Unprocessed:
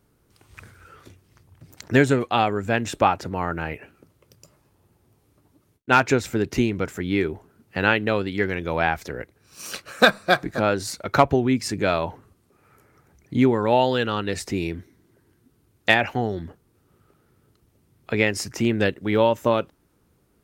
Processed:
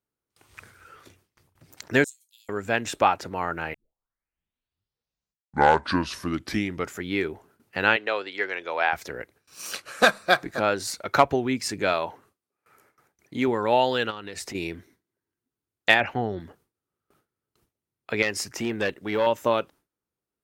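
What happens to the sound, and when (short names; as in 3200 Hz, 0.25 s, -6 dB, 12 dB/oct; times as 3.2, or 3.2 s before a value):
2.04–2.49 inverse Chebyshev high-pass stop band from 1200 Hz, stop band 80 dB
3.74 tape start 3.30 s
7.96–8.93 three-band isolator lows -22 dB, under 370 Hz, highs -15 dB, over 7300 Hz
9.76–10.19 CVSD 64 kbps
11.93–13.48 low shelf 140 Hz -9.5 dB
14.1–14.55 compressor, threshold -29 dBFS
16–16.4 tone controls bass +5 dB, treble -12 dB
18.22–19.27 tube stage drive 11 dB, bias 0.25
whole clip: low shelf 290 Hz -10.5 dB; gate with hold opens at -50 dBFS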